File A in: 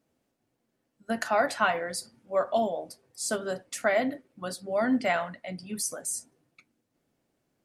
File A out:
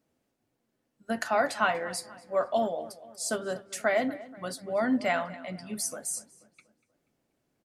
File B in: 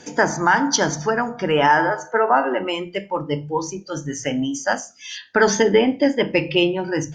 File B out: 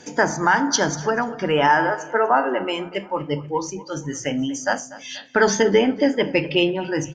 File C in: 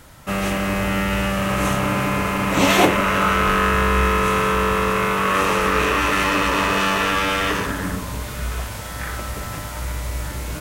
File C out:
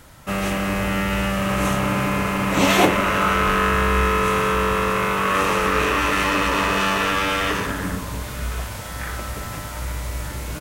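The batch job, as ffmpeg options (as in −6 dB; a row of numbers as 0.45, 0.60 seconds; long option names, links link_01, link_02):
-filter_complex "[0:a]asplit=2[link_01][link_02];[link_02]adelay=241,lowpass=frequency=3700:poles=1,volume=-18dB,asplit=2[link_03][link_04];[link_04]adelay=241,lowpass=frequency=3700:poles=1,volume=0.49,asplit=2[link_05][link_06];[link_06]adelay=241,lowpass=frequency=3700:poles=1,volume=0.49,asplit=2[link_07][link_08];[link_08]adelay=241,lowpass=frequency=3700:poles=1,volume=0.49[link_09];[link_03][link_05][link_07][link_09]amix=inputs=4:normalize=0[link_10];[link_01][link_10]amix=inputs=2:normalize=0,volume=-1dB" -ar 48000 -c:a aac -b:a 192k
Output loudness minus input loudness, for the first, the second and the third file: −1.0, −1.0, −1.0 LU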